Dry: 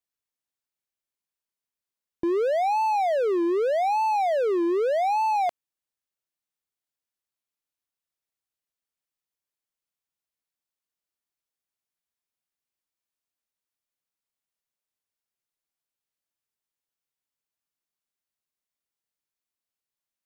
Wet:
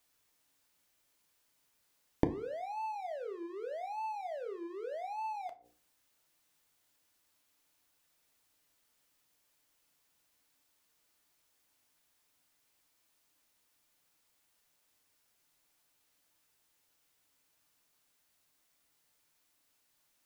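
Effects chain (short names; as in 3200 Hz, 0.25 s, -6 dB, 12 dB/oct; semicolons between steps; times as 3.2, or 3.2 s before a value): notches 60/120/180/240/300/360/420/480/540 Hz; flipped gate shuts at -34 dBFS, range -33 dB; FDN reverb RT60 0.4 s, low-frequency decay 1.25×, high-frequency decay 0.7×, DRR 6.5 dB; gain +15 dB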